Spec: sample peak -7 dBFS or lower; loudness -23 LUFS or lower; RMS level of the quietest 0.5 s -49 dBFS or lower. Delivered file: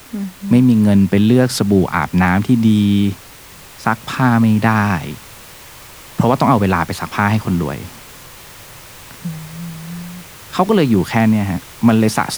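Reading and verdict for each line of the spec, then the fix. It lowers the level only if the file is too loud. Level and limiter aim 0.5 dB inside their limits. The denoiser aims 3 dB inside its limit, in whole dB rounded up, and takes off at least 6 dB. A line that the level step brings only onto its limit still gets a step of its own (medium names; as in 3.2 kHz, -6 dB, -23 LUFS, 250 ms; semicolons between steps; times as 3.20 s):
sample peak -1.5 dBFS: fail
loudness -15.0 LUFS: fail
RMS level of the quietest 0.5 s -39 dBFS: fail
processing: noise reduction 6 dB, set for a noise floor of -39 dBFS; trim -8.5 dB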